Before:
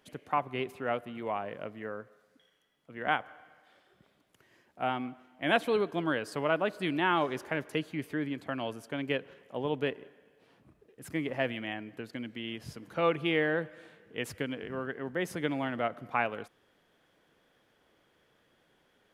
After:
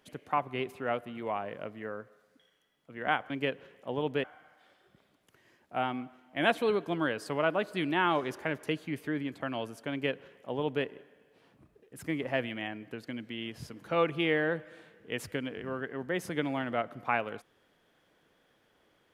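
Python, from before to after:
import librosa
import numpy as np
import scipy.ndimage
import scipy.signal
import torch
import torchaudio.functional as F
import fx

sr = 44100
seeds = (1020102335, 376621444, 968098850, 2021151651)

y = fx.edit(x, sr, fx.duplicate(start_s=8.97, length_s=0.94, to_s=3.3), tone=tone)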